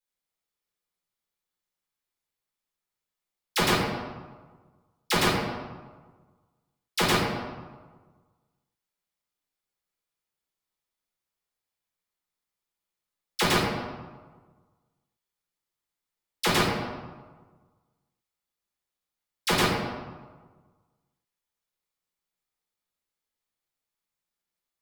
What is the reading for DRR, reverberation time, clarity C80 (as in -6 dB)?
-8.5 dB, 1.4 s, 2.5 dB